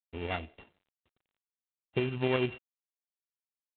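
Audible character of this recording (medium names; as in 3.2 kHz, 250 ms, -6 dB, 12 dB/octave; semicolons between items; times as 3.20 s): a buzz of ramps at a fixed pitch in blocks of 16 samples; tremolo saw up 11 Hz, depth 35%; G.726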